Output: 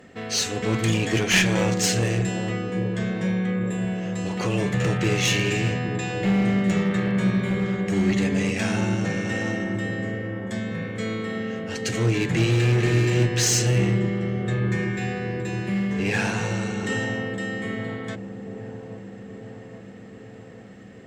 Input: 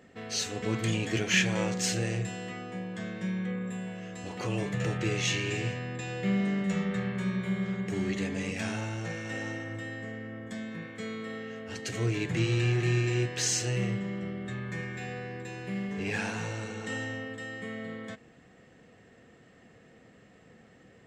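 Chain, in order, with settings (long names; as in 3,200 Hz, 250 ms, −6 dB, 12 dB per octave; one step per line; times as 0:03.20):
asymmetric clip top −26.5 dBFS
delay with a low-pass on its return 823 ms, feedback 64%, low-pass 630 Hz, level −7 dB
level +8 dB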